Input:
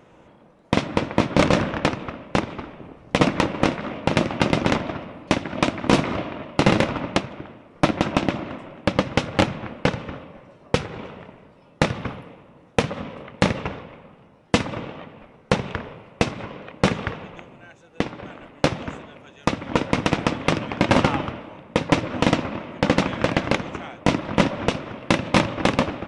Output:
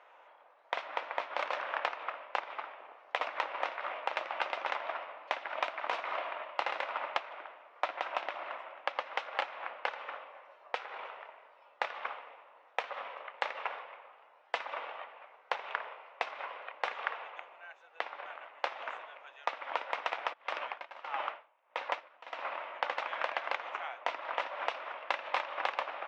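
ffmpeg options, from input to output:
-filter_complex "[0:a]asplit=3[a][b][c];[a]afade=t=out:st=20.32:d=0.02[d];[b]aeval=exprs='val(0)*pow(10,-26*(0.5-0.5*cos(2*PI*1.6*n/s))/20)':c=same,afade=t=in:st=20.32:d=0.02,afade=t=out:st=22.57:d=0.02[e];[c]afade=t=in:st=22.57:d=0.02[f];[d][e][f]amix=inputs=3:normalize=0,lowpass=2.7k,acompressor=threshold=-22dB:ratio=10,highpass=f=690:w=0.5412,highpass=f=690:w=1.3066,volume=-1.5dB"

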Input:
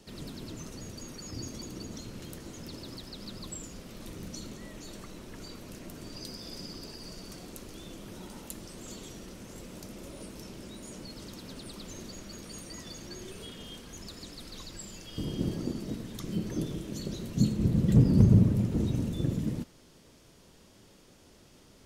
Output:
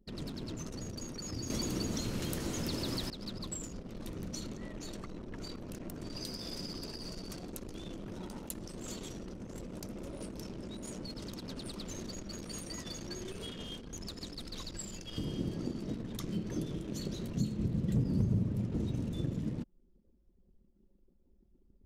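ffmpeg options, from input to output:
-filter_complex "[0:a]asplit=3[a][b][c];[a]atrim=end=1.502[d];[b]atrim=start=1.498:end=3.102,asetpts=PTS-STARTPTS,volume=11dB[e];[c]atrim=start=3.098[f];[d][e]acrossfade=d=0.004:c1=hsin:c2=hsin[g];[g][f]acrossfade=d=0.004:c1=hsin:c2=hsin,anlmdn=0.0251,acompressor=threshold=-40dB:ratio=2,volume=2.5dB"

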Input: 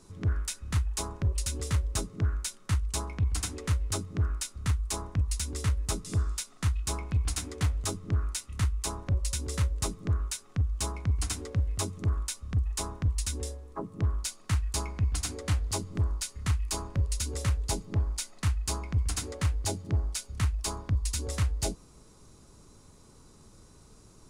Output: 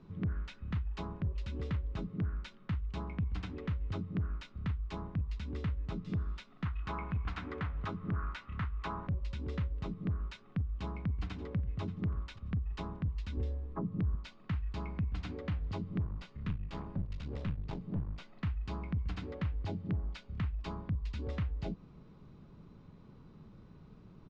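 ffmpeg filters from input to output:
-filter_complex "[0:a]asettb=1/sr,asplit=3[a][b][c];[a]atrim=end=6.654[d];[b]atrim=start=6.65:end=9.07,asetpts=PTS-STARTPTS,afade=t=in:d=0.004:c=qsin,afade=t=out:st=2.416:d=0.004:c=qsin,equalizer=f=1.3k:t=o:w=1.8:g=12.5[e];[c]atrim=start=9.066[f];[d][e]acrossfade=d=0.004:c1=hsin:c2=qsin[g];[g][f]acrossfade=d=0.004:c1=qsin:c2=hsin,asplit=2[h][i];[i]afade=t=in:st=10.66:d=0.01,afade=t=out:st=11.8:d=0.01,aecho=0:1:580|1160:0.158489|0.0237734[j];[h][j]amix=inputs=2:normalize=0,asettb=1/sr,asplit=3[k][l][m];[k]atrim=end=13.374[n];[l]atrim=start=13.37:end=14.15,asetpts=PTS-STARTPTS,afade=t=in:d=0.004:c=qsin,afade=t=out:st=0.776:d=0.004:c=qsin,lowshelf=f=150:g=10[o];[m]atrim=start=14.146[p];[n][o]acrossfade=d=0.004:c1=hsin:c2=qsin[q];[q][p]acrossfade=d=0.004:c1=qsin:c2=hsin,asettb=1/sr,asplit=3[r][s][t];[r]atrim=end=16.054[u];[s]atrim=start=16.05:end=18.35,asetpts=PTS-STARTPTS,afade=t=in:d=0.004:c=qsin,afade=t=out:st=2.296:d=0.004:c=qsin,aeval=exprs='clip(val(0),-1,0.0112)':c=same[v];[t]atrim=start=18.346[w];[u][v]acrossfade=d=0.004:c1=hsin:c2=qsin[x];[x][w]acrossfade=d=0.004:c1=qsin:c2=hsin,equalizer=f=170:w=1.3:g=11,alimiter=limit=-22.5dB:level=0:latency=1:release=202,lowpass=f=3.3k:w=0.5412,lowpass=f=3.3k:w=1.3066,volume=-4dB"

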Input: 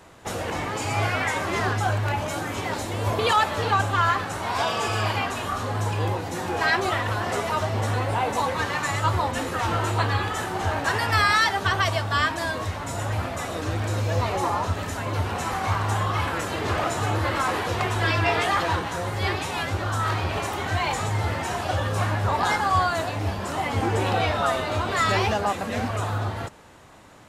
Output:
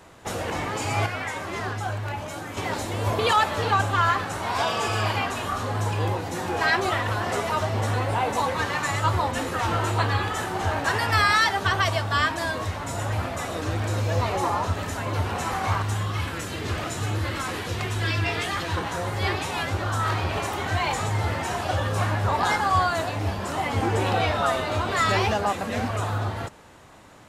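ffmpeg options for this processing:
-filter_complex "[0:a]asettb=1/sr,asplit=3[a][b][c];[a]atrim=end=15.824[d];[b]atrim=start=15.82:end=18.77,asetpts=PTS-STARTPTS,afade=t=in:d=0.004:c=qsin,afade=t=out:st=2.946:d=0.004:c=qsin,equalizer=f=830:t=o:w=2:g=-9[e];[c]atrim=start=18.766[f];[d][e]acrossfade=d=0.004:c1=hsin:c2=qsin[g];[g][f]acrossfade=d=0.004:c1=qsin:c2=hsin,asplit=3[h][i][j];[h]atrim=end=1.062[k];[i]atrim=start=1.058:end=2.572,asetpts=PTS-STARTPTS,volume=-5.5dB[l];[j]atrim=start=2.568[m];[k][l]acrossfade=d=0.004:c1=hsin:c2=hsin[n];[n][m]acrossfade=d=0.004:c1=hsin:c2=hsin"

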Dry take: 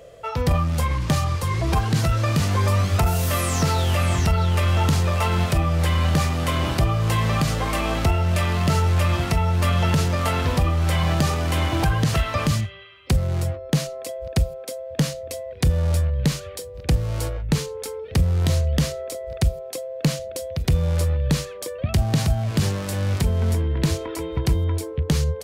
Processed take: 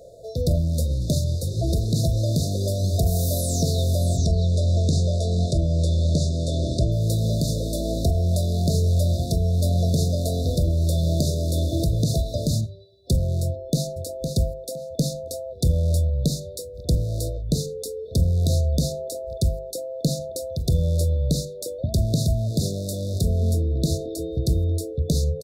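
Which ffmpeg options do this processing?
-filter_complex "[0:a]asettb=1/sr,asplit=3[a][b][c];[a]atrim=end=4.174[d];[b]atrim=start=4.17:end=6.92,asetpts=PTS-STARTPTS,afade=t=in:d=0.004:c=qsin,afade=t=out:st=2.746:d=0.004:c=qsin,lowpass=f=8.2k:w=0.5412,lowpass=f=8.2k:w=1.3066[e];[c]atrim=start=6.916[f];[d][e]acrossfade=d=0.004:c1=hsin:c2=qsin[g];[g][f]acrossfade=d=0.004:c1=qsin:c2=hsin,asplit=2[h][i];[i]afade=t=in:st=13.45:d=0.01,afade=t=out:st=14.01:d=0.01,aecho=0:1:510|1020|1530:0.421697|0.0843393|0.0168679[j];[h][j]amix=inputs=2:normalize=0,afftfilt=real='re*(1-between(b*sr/4096,710,3500))':imag='im*(1-between(b*sr/4096,710,3500))':win_size=4096:overlap=0.75,bandreject=f=50:t=h:w=6,bandreject=f=100:t=h:w=6,bandreject=f=150:t=h:w=6,bandreject=f=200:t=h:w=6,bandreject=f=250:t=h:w=6,bandreject=f=300:t=h:w=6,bandreject=f=350:t=h:w=6"

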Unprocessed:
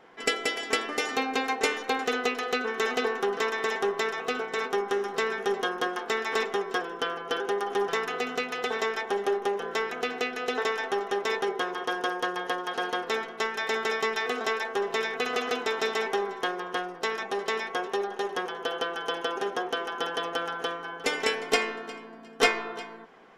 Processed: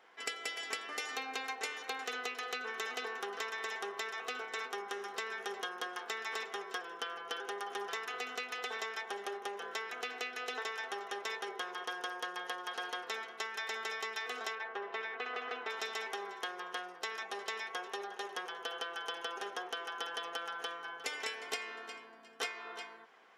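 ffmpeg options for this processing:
-filter_complex "[0:a]asettb=1/sr,asplit=3[a][b][c];[a]atrim=end=14.554[d];[b]atrim=start=14.55:end=15.7,asetpts=PTS-STARTPTS,afade=t=in:d=0.004:c=qsin,afade=t=out:st=1.146:d=0.004:c=qsin,highpass=170,lowpass=2.4k[e];[c]atrim=start=15.696[f];[d][e]acrossfade=d=0.004:c1=hsin:c2=qsin[g];[g][f]acrossfade=d=0.004:c1=qsin:c2=hsin,highpass=f=1.2k:p=1,acompressor=threshold=-32dB:ratio=6,volume=-3.5dB"

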